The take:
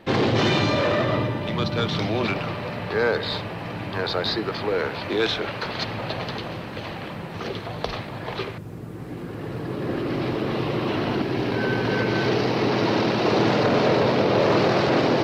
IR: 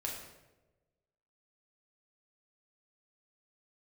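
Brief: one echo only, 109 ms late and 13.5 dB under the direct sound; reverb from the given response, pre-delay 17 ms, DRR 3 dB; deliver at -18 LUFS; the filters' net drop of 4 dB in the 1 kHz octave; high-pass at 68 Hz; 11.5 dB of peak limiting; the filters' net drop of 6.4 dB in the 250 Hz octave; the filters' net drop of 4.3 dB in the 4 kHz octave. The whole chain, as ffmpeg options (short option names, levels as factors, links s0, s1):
-filter_complex "[0:a]highpass=68,equalizer=f=250:t=o:g=-9,equalizer=f=1000:t=o:g=-4.5,equalizer=f=4000:t=o:g=-5,alimiter=limit=0.0668:level=0:latency=1,aecho=1:1:109:0.211,asplit=2[s0][s1];[1:a]atrim=start_sample=2205,adelay=17[s2];[s1][s2]afir=irnorm=-1:irlink=0,volume=0.596[s3];[s0][s3]amix=inputs=2:normalize=0,volume=4.22"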